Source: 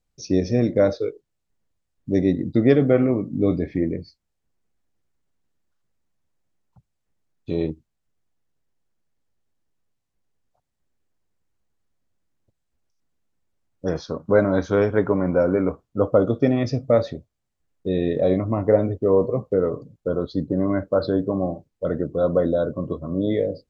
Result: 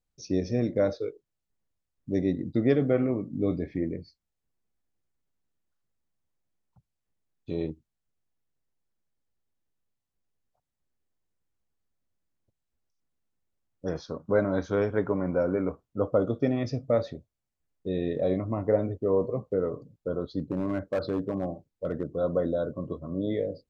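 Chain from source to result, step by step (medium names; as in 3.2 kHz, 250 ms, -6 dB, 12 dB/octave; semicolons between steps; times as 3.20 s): 20.39–22.16 s: overload inside the chain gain 15 dB; trim -7 dB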